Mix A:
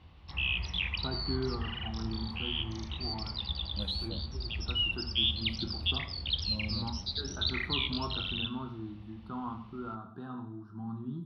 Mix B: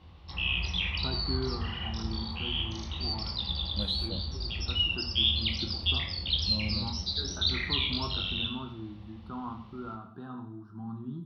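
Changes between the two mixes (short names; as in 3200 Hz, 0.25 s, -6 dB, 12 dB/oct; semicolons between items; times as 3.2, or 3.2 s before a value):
second voice +4.0 dB; background: send +11.0 dB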